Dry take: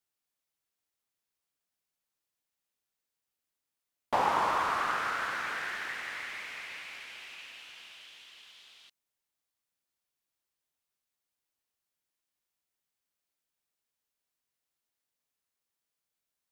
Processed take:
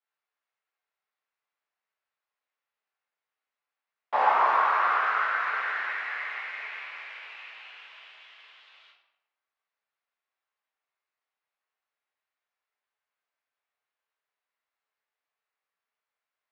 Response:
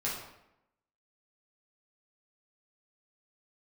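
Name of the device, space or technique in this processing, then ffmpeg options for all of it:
supermarket ceiling speaker: -filter_complex "[0:a]highpass=240,lowpass=5100,acrossover=split=520 2900:gain=0.126 1 0.2[s0][s1][s2];[s0][s1][s2]amix=inputs=3:normalize=0[s3];[1:a]atrim=start_sample=2205[s4];[s3][s4]afir=irnorm=-1:irlink=0,volume=1.19"

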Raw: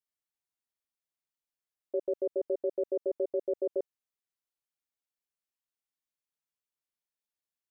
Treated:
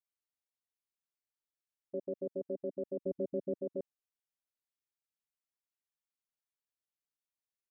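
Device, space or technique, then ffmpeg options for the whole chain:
octave pedal: -filter_complex "[0:a]asplit=2[s0][s1];[s1]asetrate=22050,aresample=44100,atempo=2,volume=0.355[s2];[s0][s2]amix=inputs=2:normalize=0,asettb=1/sr,asplit=3[s3][s4][s5];[s3]atrim=end=3.014[s6];[s4]atrim=start=3.01:end=3.54,asetpts=PTS-STARTPTS,afade=t=in:d=0.004:c=qsin,afade=t=out:st=0.526:d=0.004:c=qsin,lowshelf=f=220:g=10[s7];[s5]atrim=start=3.536[s8];[s6][s7]acrossfade=d=0.004:c1=hsin:c2=qsin[s9];[s9][s8]acrossfade=d=0.004:c1=qsin:c2=hsin,volume=0.422"

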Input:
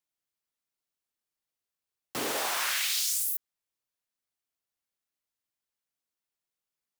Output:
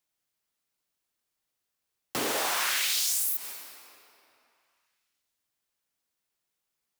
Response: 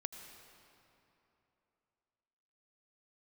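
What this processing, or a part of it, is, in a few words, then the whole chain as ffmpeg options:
ducked reverb: -filter_complex "[0:a]asplit=3[s0][s1][s2];[1:a]atrim=start_sample=2205[s3];[s1][s3]afir=irnorm=-1:irlink=0[s4];[s2]apad=whole_len=308614[s5];[s4][s5]sidechaincompress=threshold=0.0141:ratio=8:attack=16:release=136,volume=1.88[s6];[s0][s6]amix=inputs=2:normalize=0,volume=0.841"

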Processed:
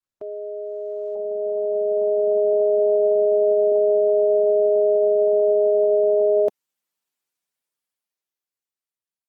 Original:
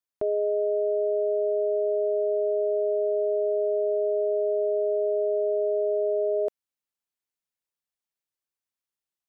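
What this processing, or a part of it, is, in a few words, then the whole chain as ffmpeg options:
video call: -filter_complex "[0:a]asettb=1/sr,asplit=3[s0][s1][s2];[s0]atrim=end=2.534[s3];[s1]atrim=start=2.53:end=3.72,asetpts=PTS-STARTPTS,afade=t=in:d=0.004:c=qsin,afade=t=out:st=1.186:d=0.004:c=qsin,highpass=f=66:w=0.5412,highpass=f=66:w=1.3066[s4];[s2]atrim=start=3.716[s5];[s3][s4]acrossfade=d=0.004:c1=hsin:c2=qsin[s6];[s6][s5]acrossfade=d=0.004:c1=qsin:c2=hsin,highpass=140,dynaudnorm=f=390:g=9:m=5.31,volume=0.473" -ar 48000 -c:a libopus -b:a 16k

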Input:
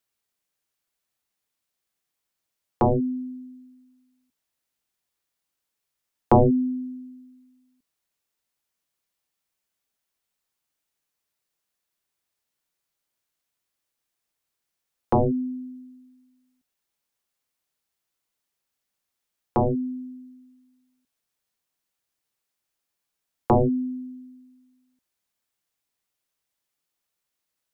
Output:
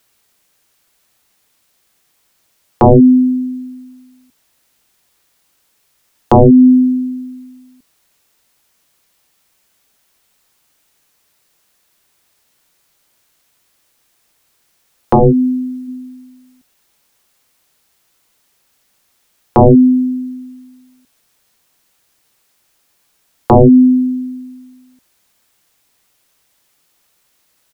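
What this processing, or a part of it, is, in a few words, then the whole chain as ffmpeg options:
loud club master: -filter_complex "[0:a]asplit=3[s0][s1][s2];[s0]afade=t=out:st=15.13:d=0.02[s3];[s1]asplit=2[s4][s5];[s5]adelay=14,volume=0.501[s6];[s4][s6]amix=inputs=2:normalize=0,afade=t=in:st=15.13:d=0.02,afade=t=out:st=15.87:d=0.02[s7];[s2]afade=t=in:st=15.87:d=0.02[s8];[s3][s7][s8]amix=inputs=3:normalize=0,acompressor=threshold=0.0631:ratio=2.5,asoftclip=type=hard:threshold=0.224,alimiter=level_in=13.3:limit=0.891:release=50:level=0:latency=1,volume=0.891"

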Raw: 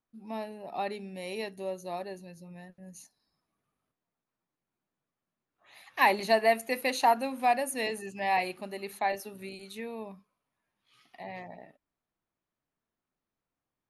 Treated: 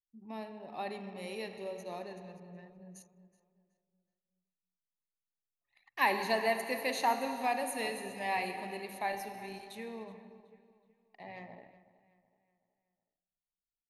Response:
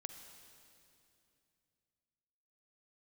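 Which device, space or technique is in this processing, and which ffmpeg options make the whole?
stairwell: -filter_complex "[1:a]atrim=start_sample=2205[s0];[0:a][s0]afir=irnorm=-1:irlink=0,anlmdn=0.001,equalizer=f=690:w=3.8:g=-4,asplit=2[s1][s2];[s2]adelay=373,lowpass=f=3900:p=1,volume=0.141,asplit=2[s3][s4];[s4]adelay=373,lowpass=f=3900:p=1,volume=0.44,asplit=2[s5][s6];[s6]adelay=373,lowpass=f=3900:p=1,volume=0.44,asplit=2[s7][s8];[s8]adelay=373,lowpass=f=3900:p=1,volume=0.44[s9];[s1][s3][s5][s7][s9]amix=inputs=5:normalize=0"

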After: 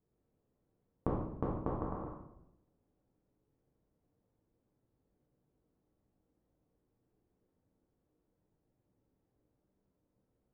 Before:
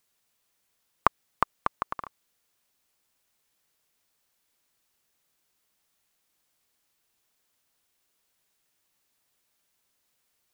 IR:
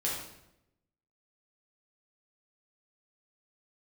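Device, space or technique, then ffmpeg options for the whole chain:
television next door: -filter_complex "[0:a]asettb=1/sr,asplit=3[s0][s1][s2];[s0]atrim=end=1.524[s3];[s1]atrim=start=1.52:end=1.96,asetpts=PTS-STARTPTS,afade=t=in:d=0.004:c=qsin,afade=t=out:st=0.436:d=0.004:c=qsin,equalizer=f=870:t=o:w=1.6:g=6[s4];[s2]atrim=start=1.956[s5];[s3][s4]acrossfade=d=0.004:c1=hsin:c2=qsin[s6];[s6][s5]acrossfade=d=0.004:c1=qsin:c2=hsin,acompressor=threshold=0.0282:ratio=4,lowpass=350[s7];[1:a]atrim=start_sample=2205[s8];[s7][s8]afir=irnorm=-1:irlink=0,volume=2.11"

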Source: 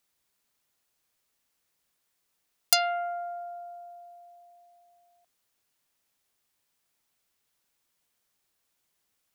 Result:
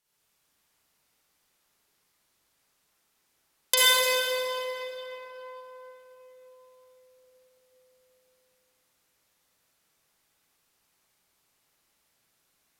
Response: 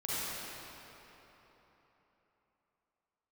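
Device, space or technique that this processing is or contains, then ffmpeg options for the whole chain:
slowed and reverbed: -filter_complex "[0:a]asetrate=32193,aresample=44100[s0];[1:a]atrim=start_sample=2205[s1];[s0][s1]afir=irnorm=-1:irlink=0"

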